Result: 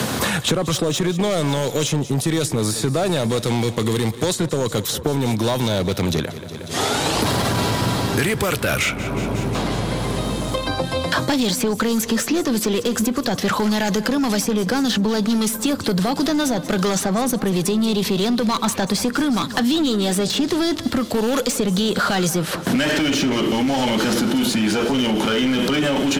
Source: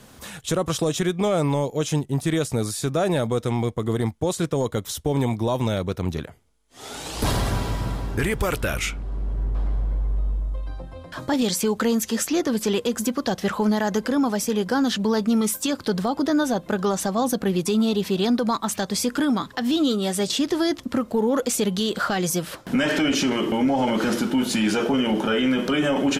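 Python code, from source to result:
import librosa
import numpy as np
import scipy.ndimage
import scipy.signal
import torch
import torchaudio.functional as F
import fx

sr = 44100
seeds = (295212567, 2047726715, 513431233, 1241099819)

p1 = scipy.signal.sosfilt(scipy.signal.butter(4, 80.0, 'highpass', fs=sr, output='sos'), x)
p2 = fx.peak_eq(p1, sr, hz=4100.0, db=3.0, octaves=0.41)
p3 = fx.over_compress(p2, sr, threshold_db=-27.0, ratio=-1.0)
p4 = p2 + F.gain(torch.from_numpy(p3), -2.0).numpy()
p5 = np.clip(p4, -10.0 ** (-15.5 / 20.0), 10.0 ** (-15.5 / 20.0))
p6 = p5 + fx.echo_feedback(p5, sr, ms=181, feedback_pct=55, wet_db=-17.5, dry=0)
y = fx.band_squash(p6, sr, depth_pct=100)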